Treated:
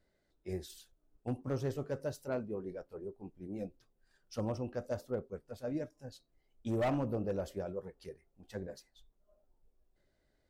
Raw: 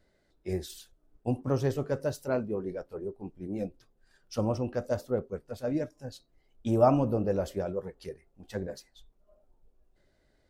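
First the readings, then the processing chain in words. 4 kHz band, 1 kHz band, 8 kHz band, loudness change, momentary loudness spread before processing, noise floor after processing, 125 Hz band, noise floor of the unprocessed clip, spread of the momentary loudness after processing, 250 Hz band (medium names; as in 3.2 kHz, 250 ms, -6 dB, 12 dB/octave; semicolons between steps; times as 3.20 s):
-6.0 dB, -10.0 dB, -7.0 dB, -8.0 dB, 17 LU, -77 dBFS, -7.5 dB, -70 dBFS, 16 LU, -7.5 dB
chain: overload inside the chain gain 21 dB; trim -7 dB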